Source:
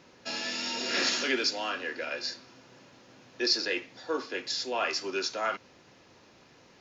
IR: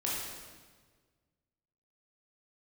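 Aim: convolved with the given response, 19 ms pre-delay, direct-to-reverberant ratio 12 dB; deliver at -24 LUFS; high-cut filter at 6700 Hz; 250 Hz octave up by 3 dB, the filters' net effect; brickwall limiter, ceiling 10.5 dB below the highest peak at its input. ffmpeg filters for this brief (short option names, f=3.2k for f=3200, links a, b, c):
-filter_complex "[0:a]lowpass=6.7k,equalizer=f=250:t=o:g=4,alimiter=level_in=1dB:limit=-24dB:level=0:latency=1,volume=-1dB,asplit=2[a][b];[1:a]atrim=start_sample=2205,adelay=19[c];[b][c]afir=irnorm=-1:irlink=0,volume=-17.5dB[d];[a][d]amix=inputs=2:normalize=0,volume=10dB"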